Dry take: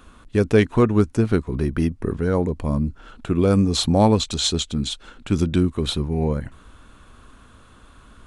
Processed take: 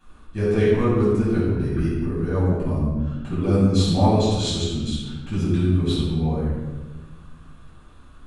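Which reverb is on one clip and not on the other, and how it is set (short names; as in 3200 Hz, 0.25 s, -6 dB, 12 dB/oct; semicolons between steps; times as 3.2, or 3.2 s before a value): shoebox room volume 810 m³, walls mixed, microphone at 8.5 m; gain -17.5 dB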